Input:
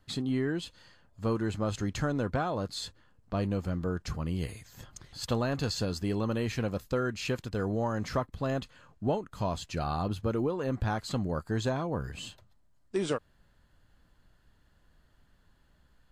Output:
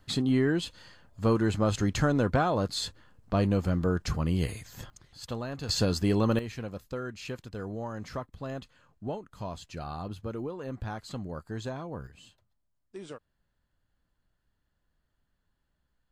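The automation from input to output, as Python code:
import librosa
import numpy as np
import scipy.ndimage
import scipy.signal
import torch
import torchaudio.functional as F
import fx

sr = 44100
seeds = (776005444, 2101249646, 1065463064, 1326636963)

y = fx.gain(x, sr, db=fx.steps((0.0, 5.0), (4.9, -6.0), (5.69, 5.5), (6.39, -6.0), (12.07, -12.5)))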